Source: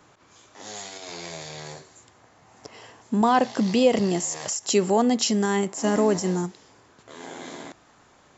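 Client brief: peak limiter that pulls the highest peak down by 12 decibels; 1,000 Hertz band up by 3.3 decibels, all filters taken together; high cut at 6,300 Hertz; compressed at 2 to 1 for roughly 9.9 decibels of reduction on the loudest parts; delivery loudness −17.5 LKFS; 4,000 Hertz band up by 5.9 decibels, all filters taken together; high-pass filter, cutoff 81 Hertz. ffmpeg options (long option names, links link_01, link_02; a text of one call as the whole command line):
ffmpeg -i in.wav -af "highpass=81,lowpass=6300,equalizer=frequency=1000:width_type=o:gain=4,equalizer=frequency=4000:width_type=o:gain=8.5,acompressor=threshold=-31dB:ratio=2,volume=18dB,alimiter=limit=-7.5dB:level=0:latency=1" out.wav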